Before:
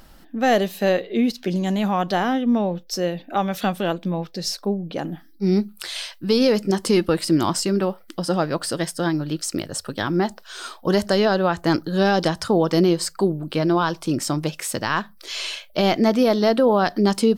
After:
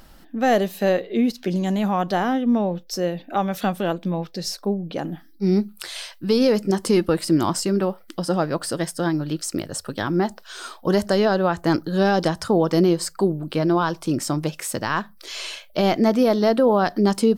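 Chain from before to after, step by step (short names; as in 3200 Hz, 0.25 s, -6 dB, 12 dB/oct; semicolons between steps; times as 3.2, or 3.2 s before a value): dynamic EQ 3400 Hz, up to -4 dB, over -37 dBFS, Q 0.76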